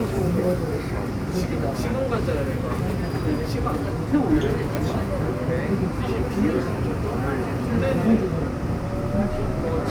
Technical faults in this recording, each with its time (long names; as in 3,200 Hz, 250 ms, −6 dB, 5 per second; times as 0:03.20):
0:04.75: click −11 dBFS